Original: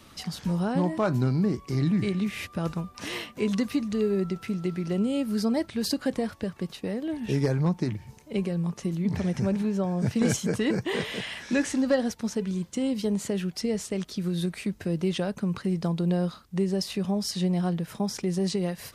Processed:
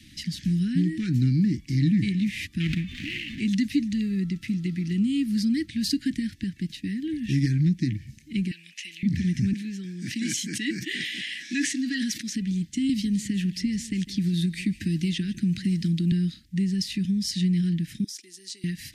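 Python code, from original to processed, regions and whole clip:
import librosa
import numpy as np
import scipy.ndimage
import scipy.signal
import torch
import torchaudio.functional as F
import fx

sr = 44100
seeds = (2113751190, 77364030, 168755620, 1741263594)

y = fx.chain(x, sr, fx.median_filter(points=25),
    fx.peak_eq(hz=2400.0, db=14.5, octaves=1.7),
    fx.pre_swell(db_per_s=22.0), at=(2.6, 3.4))
y = fx.chain(y, sr, fx.highpass(hz=1100.0, slope=12),
    fx.peak_eq(hz=2600.0, db=14.5, octaves=0.73), at=(8.51, 9.03))
y = fx.chain(y, sr, fx.highpass(hz=340.0, slope=12),
    fx.sustainer(db_per_s=61.0), at=(9.53, 12.36))
y = fx.chain(y, sr, fx.echo_single(ms=151, db=-18.5),
    fx.band_squash(depth_pct=70), at=(12.89, 16.12))
y = fx.chain(y, sr, fx.highpass(hz=520.0, slope=24),
    fx.peak_eq(hz=2100.0, db=-12.5, octaves=1.8), at=(18.04, 18.64))
y = scipy.signal.sosfilt(scipy.signal.cheby1(4, 1.0, [310.0, 1800.0], 'bandstop', fs=sr, output='sos'), y)
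y = fx.high_shelf(y, sr, hz=12000.0, db=-10.0)
y = F.gain(torch.from_numpy(y), 3.5).numpy()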